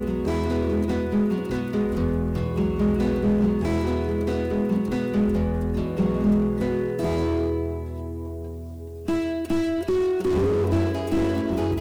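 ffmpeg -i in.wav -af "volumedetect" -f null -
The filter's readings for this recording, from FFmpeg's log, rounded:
mean_volume: -23.4 dB
max_volume: -9.1 dB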